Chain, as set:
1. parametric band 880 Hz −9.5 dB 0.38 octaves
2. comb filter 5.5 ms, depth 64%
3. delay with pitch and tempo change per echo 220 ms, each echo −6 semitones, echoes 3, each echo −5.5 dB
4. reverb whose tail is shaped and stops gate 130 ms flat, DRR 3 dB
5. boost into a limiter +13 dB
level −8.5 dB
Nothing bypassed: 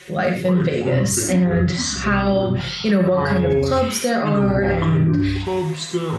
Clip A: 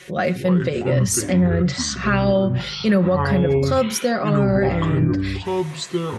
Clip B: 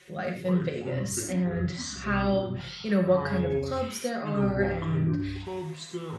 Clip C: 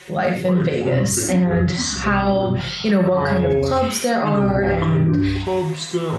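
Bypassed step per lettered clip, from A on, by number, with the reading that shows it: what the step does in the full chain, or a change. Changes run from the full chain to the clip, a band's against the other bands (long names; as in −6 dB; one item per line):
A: 4, change in momentary loudness spread +1 LU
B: 5, change in crest factor +8.0 dB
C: 1, 1 kHz band +2.0 dB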